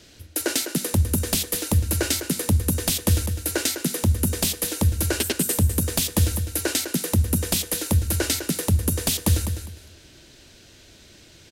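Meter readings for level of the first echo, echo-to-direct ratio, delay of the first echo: -9.0 dB, -9.0 dB, 203 ms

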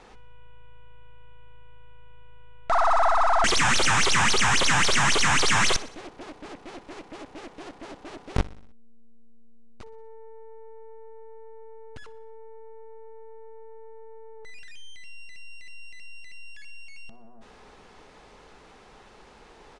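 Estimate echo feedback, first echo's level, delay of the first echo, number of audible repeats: 56%, -19.0 dB, 61 ms, 4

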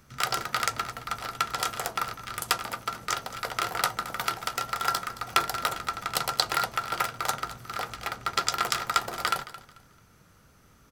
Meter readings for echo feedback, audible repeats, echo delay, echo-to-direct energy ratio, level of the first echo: 27%, 2, 220 ms, -16.0 dB, -16.5 dB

